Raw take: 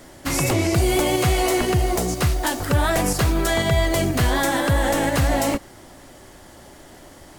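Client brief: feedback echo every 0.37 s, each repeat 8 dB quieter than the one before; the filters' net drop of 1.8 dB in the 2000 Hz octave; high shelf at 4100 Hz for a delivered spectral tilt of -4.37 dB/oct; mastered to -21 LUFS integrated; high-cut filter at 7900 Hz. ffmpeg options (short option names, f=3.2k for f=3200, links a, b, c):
-af "lowpass=7.9k,equalizer=f=2k:t=o:g=-3.5,highshelf=f=4.1k:g=6.5,aecho=1:1:370|740|1110|1480|1850:0.398|0.159|0.0637|0.0255|0.0102,volume=-1dB"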